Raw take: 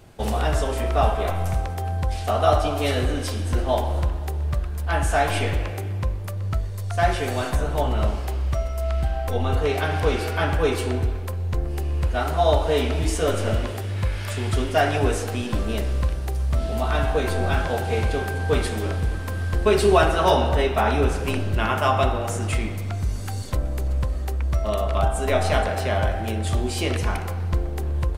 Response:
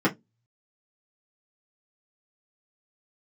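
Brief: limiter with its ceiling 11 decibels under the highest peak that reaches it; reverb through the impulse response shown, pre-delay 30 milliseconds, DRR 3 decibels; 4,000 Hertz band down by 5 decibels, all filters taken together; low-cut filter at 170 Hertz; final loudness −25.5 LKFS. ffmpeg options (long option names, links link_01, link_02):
-filter_complex "[0:a]highpass=170,equalizer=frequency=4000:width_type=o:gain=-7,alimiter=limit=-17dB:level=0:latency=1,asplit=2[link_01][link_02];[1:a]atrim=start_sample=2205,adelay=30[link_03];[link_02][link_03]afir=irnorm=-1:irlink=0,volume=-17.5dB[link_04];[link_01][link_04]amix=inputs=2:normalize=0,volume=0.5dB"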